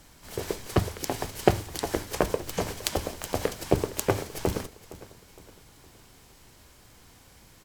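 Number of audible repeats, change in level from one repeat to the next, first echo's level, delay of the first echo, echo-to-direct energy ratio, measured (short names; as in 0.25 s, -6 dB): 3, -7.5 dB, -18.0 dB, 0.463 s, -17.0 dB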